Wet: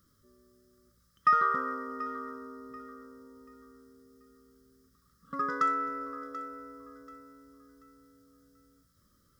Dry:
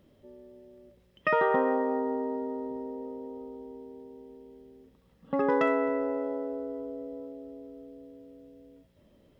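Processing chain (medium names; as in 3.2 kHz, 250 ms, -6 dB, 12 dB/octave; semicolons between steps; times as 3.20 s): FFT filter 110 Hz 0 dB, 520 Hz -11 dB, 850 Hz -30 dB, 1.2 kHz +15 dB, 2.6 kHz -13 dB, 5.1 kHz +13 dB; on a send: thinning echo 735 ms, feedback 37%, high-pass 910 Hz, level -14 dB; on the sum: trim -4.5 dB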